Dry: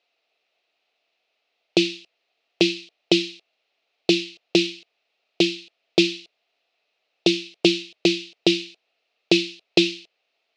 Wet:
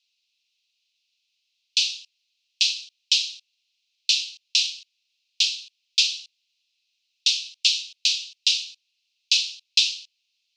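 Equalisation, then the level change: steep high-pass 2600 Hz 36 dB/oct; bell 6100 Hz +13 dB 1.6 oct; -4.0 dB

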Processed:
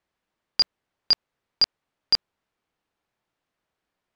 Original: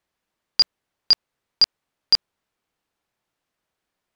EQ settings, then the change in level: LPF 4000 Hz 6 dB/oct; 0.0 dB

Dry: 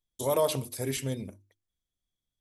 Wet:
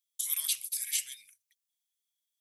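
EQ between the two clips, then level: inverse Chebyshev high-pass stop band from 790 Hz, stop band 50 dB; high shelf 6100 Hz +9.5 dB; 0.0 dB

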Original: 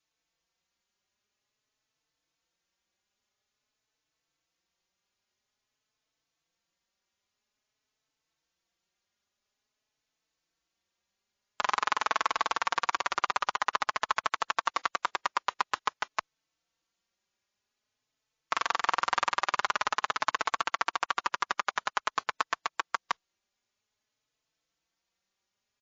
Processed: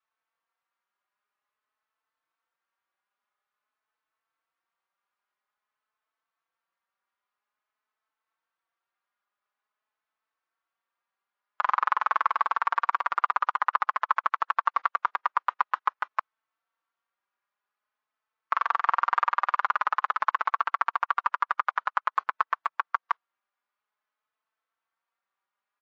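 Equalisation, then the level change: band-pass 1200 Hz, Q 2; air absorption 100 m; +6.5 dB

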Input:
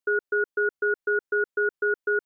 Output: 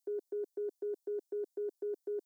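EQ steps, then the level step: HPF 330 Hz 24 dB/oct; Butterworth band-stop 1400 Hz, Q 0.57; fixed phaser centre 1100 Hz, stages 4; +8.5 dB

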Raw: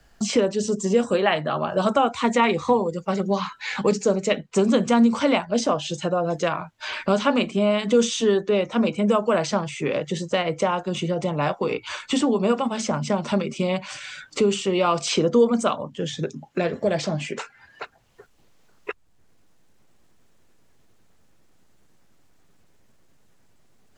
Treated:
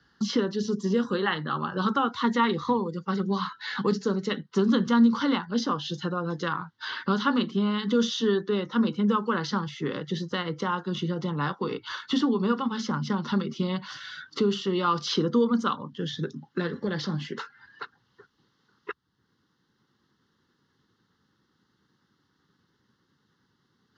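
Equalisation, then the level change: BPF 130–5400 Hz; fixed phaser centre 2400 Hz, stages 6; 0.0 dB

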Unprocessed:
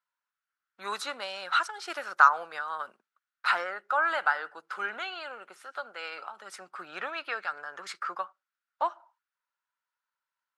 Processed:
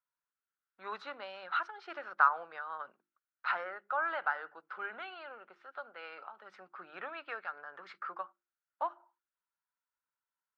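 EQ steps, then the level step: LPF 3700 Hz 6 dB/oct; air absorption 240 m; notches 50/100/150/200/250/300/350 Hz; -5.0 dB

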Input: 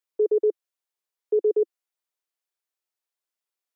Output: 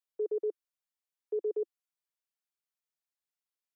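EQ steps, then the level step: low shelf 440 Hz -9 dB; -6.5 dB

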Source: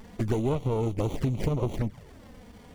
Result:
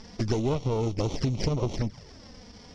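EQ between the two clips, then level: synth low-pass 5300 Hz, resonance Q 11; 0.0 dB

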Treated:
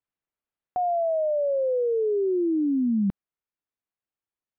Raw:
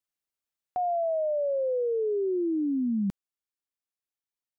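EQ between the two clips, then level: air absorption 460 m; +4.5 dB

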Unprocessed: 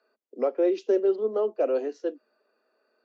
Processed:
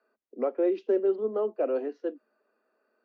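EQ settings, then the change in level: air absorption 220 m; bell 500 Hz -6.5 dB 2.1 oct; high shelf 2200 Hz -9.5 dB; +4.5 dB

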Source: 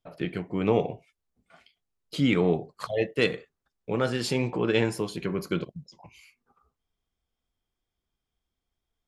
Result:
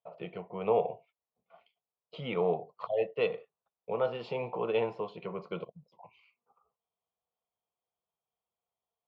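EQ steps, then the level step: speaker cabinet 360–2200 Hz, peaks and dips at 380 Hz -8 dB, 580 Hz -6 dB, 820 Hz -6 dB, 1200 Hz -4 dB, 2100 Hz -8 dB; fixed phaser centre 680 Hz, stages 4; +6.5 dB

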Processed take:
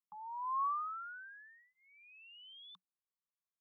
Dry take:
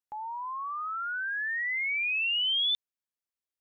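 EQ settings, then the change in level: double band-pass 450 Hz, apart 2.6 oct; fixed phaser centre 410 Hz, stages 8; +2.5 dB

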